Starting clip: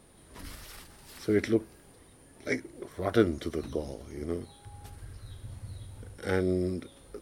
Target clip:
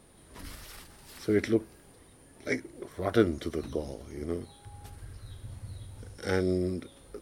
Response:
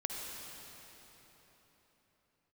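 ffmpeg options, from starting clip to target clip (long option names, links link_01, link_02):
-filter_complex "[0:a]asettb=1/sr,asplit=3[link_01][link_02][link_03];[link_01]atrim=end=5.984[link_04];[link_02]atrim=start=5.98:end=6.58,asetpts=PTS-STARTPTS,afade=type=in:duration=0.004:curve=qsin,afade=type=out:start_time=0.596:duration=0.004:curve=qsin,equalizer=frequency=5600:width_type=o:width=0.64:gain=7.5[link_05];[link_03]atrim=start=6.576[link_06];[link_04][link_05]acrossfade=duration=0.004:curve1=hsin:curve2=qsin[link_07];[link_07][link_06]acrossfade=duration=0.004:curve1=qsin:curve2=hsin"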